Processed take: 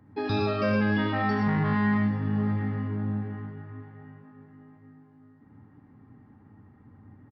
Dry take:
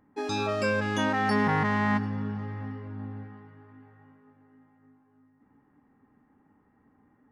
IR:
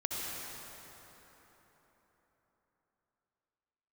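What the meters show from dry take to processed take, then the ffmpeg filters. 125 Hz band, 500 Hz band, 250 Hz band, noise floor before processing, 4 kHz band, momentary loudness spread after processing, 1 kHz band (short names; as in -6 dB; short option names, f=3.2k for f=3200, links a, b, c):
+5.0 dB, 0.0 dB, +4.0 dB, -66 dBFS, n/a, 16 LU, -2.5 dB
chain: -filter_complex "[0:a]equalizer=f=110:w=1:g=14.5,acrossover=split=130[a][b];[a]acompressor=threshold=-35dB:ratio=6[c];[b]alimiter=limit=-23dB:level=0:latency=1:release=264[d];[c][d]amix=inputs=2:normalize=0,aresample=11025,aresample=44100[e];[1:a]atrim=start_sample=2205,atrim=end_sample=6174[f];[e][f]afir=irnorm=-1:irlink=0,volume=3.5dB"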